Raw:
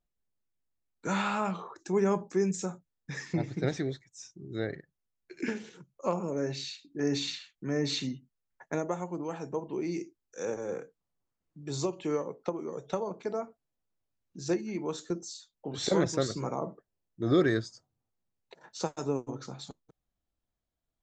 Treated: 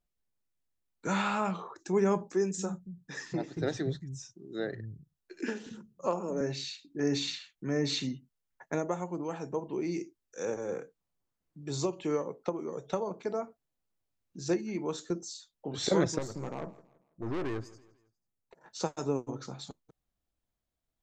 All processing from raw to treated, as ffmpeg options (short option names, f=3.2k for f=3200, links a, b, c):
-filter_complex "[0:a]asettb=1/sr,asplit=3[a][b][c];[a]atrim=end=2.344[d];[b]atrim=start=2.34:end=6.41,asetpts=PTS-STARTPTS,afade=t=in:d=0.004:c=qsin,afade=t=out:st=4.066:d=0.004:c=qsin,bandreject=f=2.2k:w=5.2,acrossover=split=180[e][f];[e]adelay=230[g];[g][f]amix=inputs=2:normalize=0,atrim=end_sample=179487[h];[c]atrim=start=6.406[i];[d][h]acrossfade=d=0.004:c1=hsin:c2=qsin[j];[j][i]acrossfade=d=0.004:c1=qsin:c2=hsin,asettb=1/sr,asplit=3[k][l][m];[k]atrim=end=16.184[n];[l]atrim=start=16.18:end=18.66,asetpts=PTS-STARTPTS,afade=t=in:d=0.004:c=qsin,afade=t=out:st=2.476:d=0.004:c=qsin,equalizer=f=3.6k:w=1.2:g=-14.5,aeval=exprs='(tanh(39.8*val(0)+0.65)-tanh(0.65))/39.8':c=same,aecho=1:1:164|328|492:0.0944|0.0378|0.0151,atrim=end_sample=109368[o];[m]atrim=start=18.656[p];[n][o]acrossfade=d=0.004:c1=hsin:c2=qsin[q];[q][p]acrossfade=d=0.004:c1=qsin:c2=hsin"